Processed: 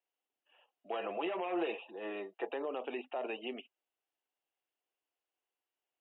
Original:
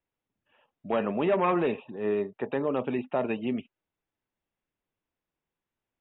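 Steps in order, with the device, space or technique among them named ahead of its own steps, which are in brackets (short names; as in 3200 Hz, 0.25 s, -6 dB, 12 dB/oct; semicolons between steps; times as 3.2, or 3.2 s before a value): laptop speaker (HPF 340 Hz 24 dB/oct; bell 740 Hz +7.5 dB 0.23 oct; bell 2900 Hz +9 dB 0.3 oct; limiter -23.5 dBFS, peak gain reduction 11 dB); 0.93–2.49 comb 6 ms, depth 69%; gain -5.5 dB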